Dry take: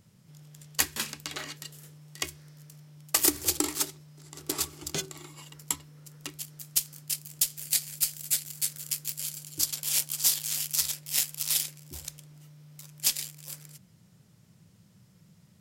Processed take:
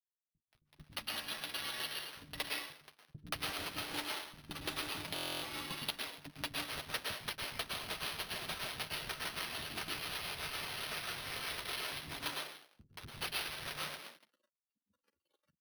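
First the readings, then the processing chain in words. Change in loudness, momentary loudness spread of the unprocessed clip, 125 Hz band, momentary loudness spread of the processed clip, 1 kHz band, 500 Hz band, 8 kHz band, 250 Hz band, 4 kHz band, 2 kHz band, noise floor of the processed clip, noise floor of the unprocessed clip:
-11.0 dB, 18 LU, -6.5 dB, 7 LU, +1.5 dB, -3.0 dB, -19.0 dB, -8.0 dB, -4.5 dB, +1.0 dB, under -85 dBFS, -60 dBFS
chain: comb 3.6 ms, depth 79%; compressor 10:1, threshold -36 dBFS, peak gain reduction 20.5 dB; thirty-one-band EQ 200 Hz +7 dB, 315 Hz -4 dB, 630 Hz +4 dB, 1600 Hz +5 dB, 4000 Hz +8 dB, 8000 Hz -9 dB; plate-style reverb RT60 1.1 s, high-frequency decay 0.9×, pre-delay 95 ms, DRR -4 dB; crossover distortion -45.5 dBFS; chorus voices 6, 0.15 Hz, delay 10 ms, depth 4.1 ms; HPF 84 Hz 24 dB/oct; spectral noise reduction 21 dB; careless resampling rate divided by 6×, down none, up hold; bands offset in time lows, highs 0.18 s, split 260 Hz; vocal rider within 4 dB 0.5 s; stuck buffer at 5.14, samples 1024, times 11; gain +2.5 dB

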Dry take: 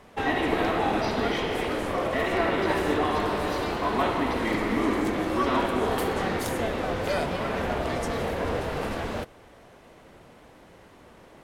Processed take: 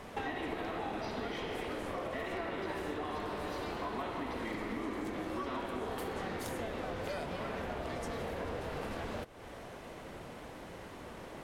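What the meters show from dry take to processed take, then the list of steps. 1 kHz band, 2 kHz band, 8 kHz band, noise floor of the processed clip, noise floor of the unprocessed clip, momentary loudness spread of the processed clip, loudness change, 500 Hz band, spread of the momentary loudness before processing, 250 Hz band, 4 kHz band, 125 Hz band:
-12.0 dB, -12.0 dB, -11.0 dB, -48 dBFS, -52 dBFS, 10 LU, -13.0 dB, -12.0 dB, 4 LU, -12.0 dB, -11.5 dB, -11.0 dB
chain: compressor 5:1, threshold -42 dBFS, peak gain reduction 19 dB; gain +4 dB

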